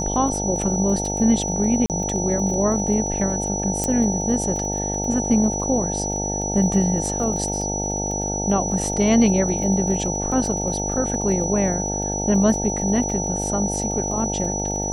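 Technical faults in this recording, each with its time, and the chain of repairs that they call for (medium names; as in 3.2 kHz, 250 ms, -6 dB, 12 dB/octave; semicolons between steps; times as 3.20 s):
buzz 50 Hz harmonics 18 -27 dBFS
crackle 22 per s -29 dBFS
whine 5.9 kHz -26 dBFS
1.86–1.90 s: dropout 38 ms
3.84 s: pop -9 dBFS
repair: de-click; de-hum 50 Hz, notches 18; band-stop 5.9 kHz, Q 30; interpolate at 1.86 s, 38 ms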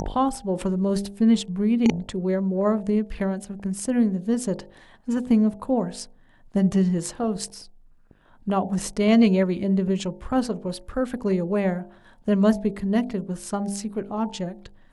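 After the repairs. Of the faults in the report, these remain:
nothing left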